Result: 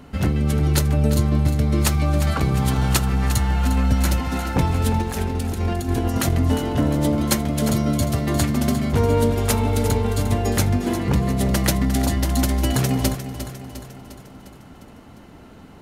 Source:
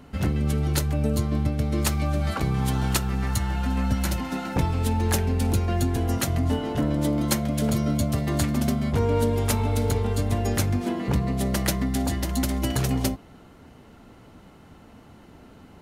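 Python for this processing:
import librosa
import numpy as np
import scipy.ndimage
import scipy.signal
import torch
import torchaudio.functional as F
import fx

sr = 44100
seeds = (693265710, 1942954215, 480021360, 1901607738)

p1 = fx.over_compress(x, sr, threshold_db=-25.0, ratio=-0.5, at=(5.02, 6.34))
p2 = p1 + fx.echo_feedback(p1, sr, ms=353, feedback_pct=56, wet_db=-11.0, dry=0)
y = p2 * librosa.db_to_amplitude(4.0)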